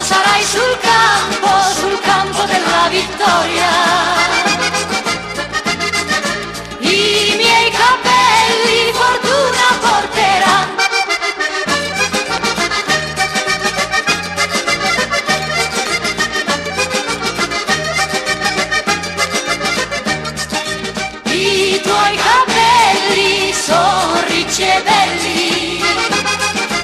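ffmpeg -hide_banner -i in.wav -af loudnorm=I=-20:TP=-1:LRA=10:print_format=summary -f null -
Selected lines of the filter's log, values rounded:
Input Integrated:    -12.9 LUFS
Input True Peak:      -1.5 dBTP
Input LRA:             4.1 LU
Input Threshold:     -23.0 LUFS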